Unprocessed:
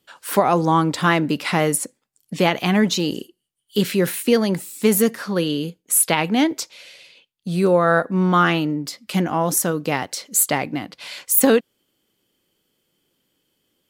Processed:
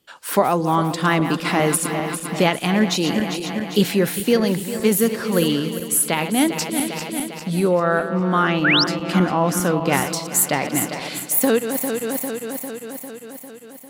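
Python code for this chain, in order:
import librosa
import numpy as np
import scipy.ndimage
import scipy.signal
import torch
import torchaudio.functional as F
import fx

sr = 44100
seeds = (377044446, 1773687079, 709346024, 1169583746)

y = fx.reverse_delay_fb(x, sr, ms=200, feedback_pct=79, wet_db=-11.0)
y = fx.high_shelf(y, sr, hz=7000.0, db=-11.0, at=(7.8, 9.93))
y = fx.rider(y, sr, range_db=4, speed_s=0.5)
y = fx.spec_paint(y, sr, seeds[0], shape='rise', start_s=8.64, length_s=0.2, low_hz=1300.0, high_hz=5800.0, level_db=-17.0)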